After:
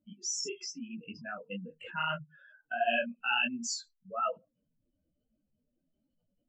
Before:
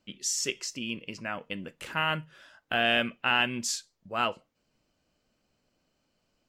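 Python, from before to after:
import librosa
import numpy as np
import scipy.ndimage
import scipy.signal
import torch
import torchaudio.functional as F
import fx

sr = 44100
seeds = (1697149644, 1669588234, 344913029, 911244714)

y = fx.spec_expand(x, sr, power=3.3)
y = fx.detune_double(y, sr, cents=39)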